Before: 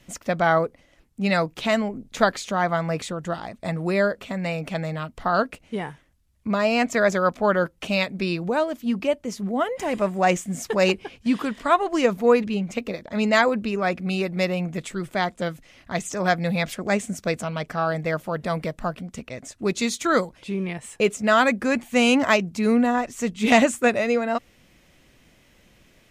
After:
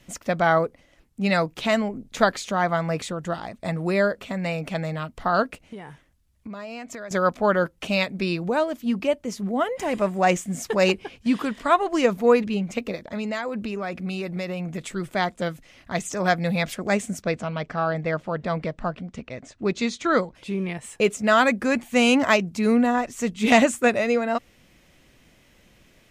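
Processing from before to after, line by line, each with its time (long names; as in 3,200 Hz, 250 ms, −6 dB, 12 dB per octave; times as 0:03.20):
0:05.59–0:07.11: downward compressor, threshold −34 dBFS
0:12.96–0:14.91: downward compressor, threshold −25 dBFS
0:17.22–0:20.35: high-frequency loss of the air 110 metres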